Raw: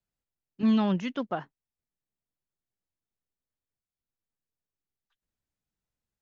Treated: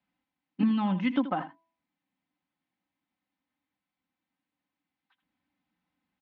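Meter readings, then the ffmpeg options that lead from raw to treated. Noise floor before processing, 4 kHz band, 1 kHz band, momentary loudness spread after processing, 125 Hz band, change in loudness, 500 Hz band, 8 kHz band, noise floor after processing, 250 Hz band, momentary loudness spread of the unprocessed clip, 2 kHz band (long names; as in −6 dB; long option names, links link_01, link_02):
below −85 dBFS, −2.0 dB, +2.0 dB, 8 LU, −1.0 dB, −0.5 dB, −4.5 dB, can't be measured, below −85 dBFS, −0.5 dB, 11 LU, +2.5 dB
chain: -filter_complex "[0:a]highpass=130,equalizer=frequency=170:width_type=q:width=4:gain=6,equalizer=frequency=290:width_type=q:width=4:gain=9,equalizer=frequency=450:width_type=q:width=4:gain=-10,equalizer=frequency=890:width_type=q:width=4:gain=8,equalizer=frequency=2100:width_type=q:width=4:gain=5,lowpass=frequency=3700:width=0.5412,lowpass=frequency=3700:width=1.3066,acompressor=threshold=-33dB:ratio=10,aecho=1:1:3.9:0.54,bandreject=frequency=330:width_type=h:width=4,bandreject=frequency=660:width_type=h:width=4,bandreject=frequency=990:width_type=h:width=4,asplit=2[link_01][link_02];[link_02]aecho=0:1:80:0.224[link_03];[link_01][link_03]amix=inputs=2:normalize=0,volume=7.5dB"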